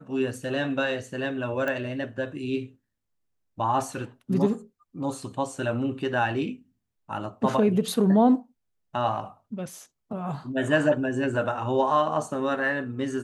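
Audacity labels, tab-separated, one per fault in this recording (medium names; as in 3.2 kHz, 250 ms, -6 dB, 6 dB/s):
1.680000	1.680000	pop -17 dBFS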